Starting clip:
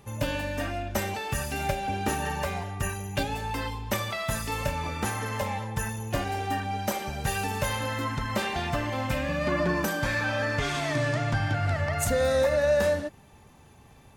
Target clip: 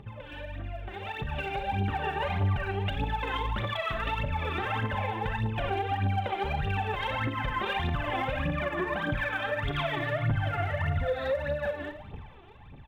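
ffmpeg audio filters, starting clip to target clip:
ffmpeg -i in.wav -filter_complex "[0:a]asplit=2[link_01][link_02];[link_02]aecho=0:1:60|120|180:0.178|0.048|0.013[link_03];[link_01][link_03]amix=inputs=2:normalize=0,aresample=8000,aresample=44100,acompressor=threshold=-35dB:ratio=6,aphaser=in_gain=1:out_gain=1:delay=3:decay=0.77:speed=1.5:type=triangular,alimiter=level_in=4dB:limit=-24dB:level=0:latency=1:release=144,volume=-4dB,dynaudnorm=framelen=250:gausssize=11:maxgain=11dB,asplit=2[link_04][link_05];[link_05]aecho=0:1:41|61:0.188|0.237[link_06];[link_04][link_06]amix=inputs=2:normalize=0,atempo=1.1,volume=-4dB" out.wav

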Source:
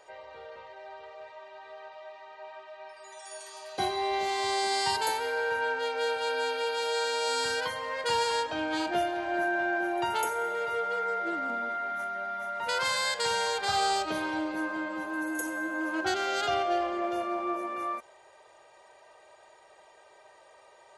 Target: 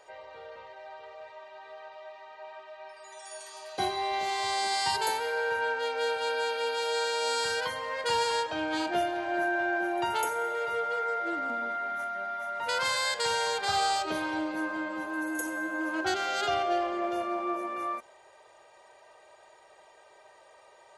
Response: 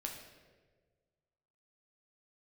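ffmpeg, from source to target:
-af "bandreject=frequency=65.5:width_type=h:width=4,bandreject=frequency=131:width_type=h:width=4,bandreject=frequency=196.5:width_type=h:width=4,bandreject=frequency=262:width_type=h:width=4,bandreject=frequency=327.5:width_type=h:width=4,bandreject=frequency=393:width_type=h:width=4"

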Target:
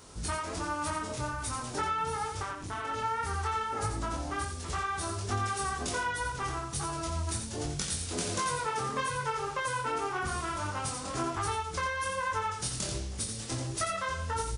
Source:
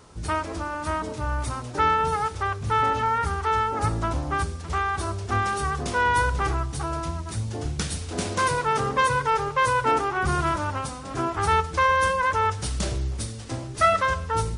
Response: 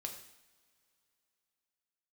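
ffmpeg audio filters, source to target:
-filter_complex "[0:a]highshelf=frequency=4000:gain=10.5,acompressor=threshold=-27dB:ratio=6,asettb=1/sr,asplit=3[link_01][link_02][link_03];[link_01]atrim=end=2.424[link_04];[link_02]atrim=start=2.42:end=2.85,asetpts=PTS-STARTPTS,afade=type=in:duration=0.004:curve=qsin,afade=type=out:start_time=0.426:duration=0.004:curve=qsin,tremolo=f=200:d=1[link_05];[link_03]atrim=start=2.846[link_06];[link_04][link_05]acrossfade=duration=0.004:curve1=hsin:curve2=qsin[link_07];[link_07][link_06]acrossfade=duration=0.004:curve1=qsin:curve2=hsin,flanger=delay=20:depth=4.2:speed=1.3,asplit=2[link_08][link_09];[link_09]aecho=0:1:87:0.447[link_10];[link_08][link_10]amix=inputs=2:normalize=0"

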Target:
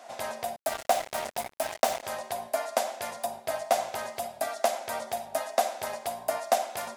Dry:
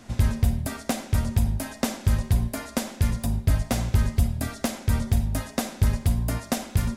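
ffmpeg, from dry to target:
ffmpeg -i in.wav -filter_complex "[0:a]highpass=frequency=680:width_type=q:width=4.9,asettb=1/sr,asplit=3[link_01][link_02][link_03];[link_01]atrim=end=0.564[link_04];[link_02]atrim=start=0.56:end=2.03,asetpts=PTS-STARTPTS,afade=type=in:duration=0.004:curve=qsin,afade=type=out:start_time=1.466:duration=0.004:curve=qsin,acrusher=bits=4:mix=0:aa=0.5[link_05];[link_03]atrim=start=2.026[link_06];[link_04][link_05]acrossfade=duration=0.004:curve1=hsin:curve2=qsin[link_07];[link_07][link_06]acrossfade=duration=0.004:curve1=qsin:curve2=hsin,volume=-2dB" out.wav

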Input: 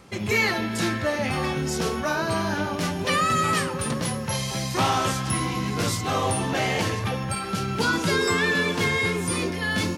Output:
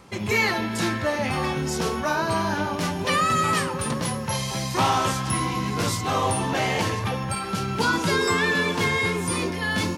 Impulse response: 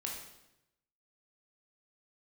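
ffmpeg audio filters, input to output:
-af "equalizer=frequency=960:width=4:gain=5"

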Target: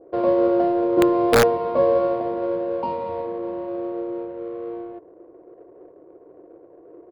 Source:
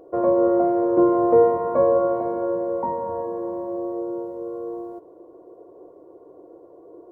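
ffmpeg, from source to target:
ffmpeg -i in.wav -af "adynamicsmooth=sensitivity=5.5:basefreq=930,aresample=11025,aresample=44100,aeval=exprs='(mod(2.51*val(0)+1,2)-1)/2.51':channel_layout=same,adynamicequalizer=threshold=0.0178:dfrequency=1500:dqfactor=0.7:tfrequency=1500:tqfactor=0.7:attack=5:release=100:ratio=0.375:range=1.5:mode=cutabove:tftype=highshelf" out.wav

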